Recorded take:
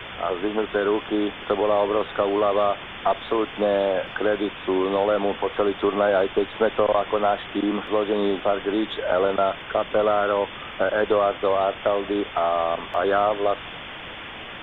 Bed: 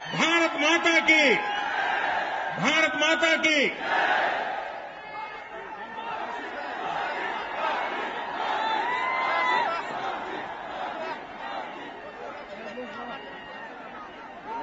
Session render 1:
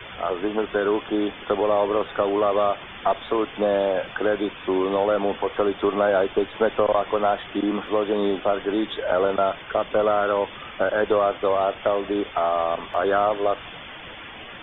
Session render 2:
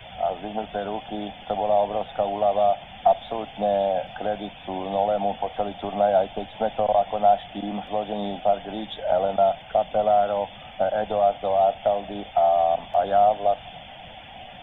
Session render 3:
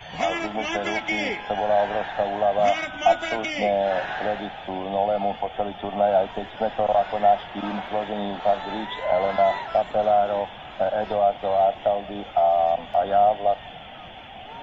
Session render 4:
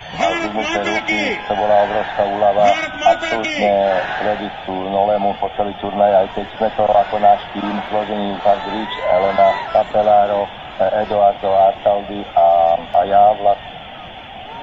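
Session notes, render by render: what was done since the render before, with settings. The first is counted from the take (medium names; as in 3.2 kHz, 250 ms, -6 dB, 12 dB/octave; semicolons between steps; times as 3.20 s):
noise reduction 8 dB, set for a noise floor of -37 dBFS
FFT filter 200 Hz 0 dB, 390 Hz -16 dB, 750 Hz +8 dB, 1.1 kHz -15 dB, 5.1 kHz +2 dB
add bed -7.5 dB
trim +7.5 dB; peak limiter -2 dBFS, peak gain reduction 2.5 dB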